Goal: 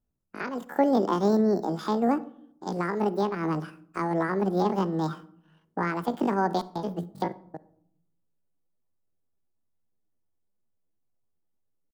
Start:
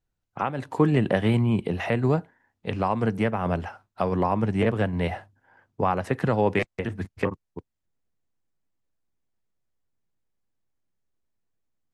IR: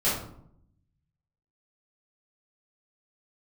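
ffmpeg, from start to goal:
-filter_complex "[0:a]equalizer=f=1.6k:t=o:w=2:g=-14.5,asetrate=80880,aresample=44100,atempo=0.545254,asplit=2[a][b];[1:a]atrim=start_sample=2205,adelay=33[c];[b][c]afir=irnorm=-1:irlink=0,volume=-30dB[d];[a][d]amix=inputs=2:normalize=0"

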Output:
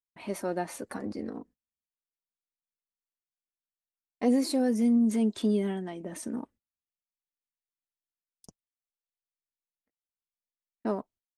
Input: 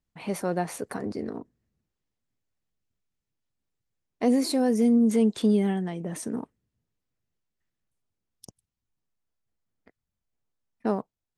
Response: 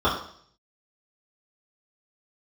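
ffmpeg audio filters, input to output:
-af "agate=range=-26dB:threshold=-51dB:ratio=16:detection=peak,flanger=delay=3.1:depth=1.5:regen=-32:speed=0.18:shape=sinusoidal"

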